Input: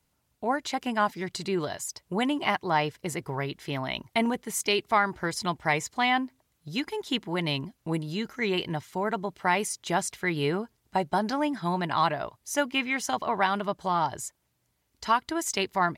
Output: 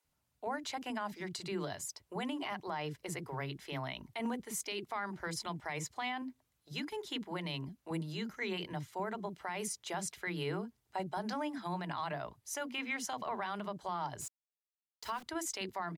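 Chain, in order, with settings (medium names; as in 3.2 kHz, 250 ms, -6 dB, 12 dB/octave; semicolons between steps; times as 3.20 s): bands offset in time highs, lows 40 ms, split 320 Hz; 14.21–15.23 s: small samples zeroed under -39.5 dBFS; peak limiter -21 dBFS, peak gain reduction 11 dB; trim -7 dB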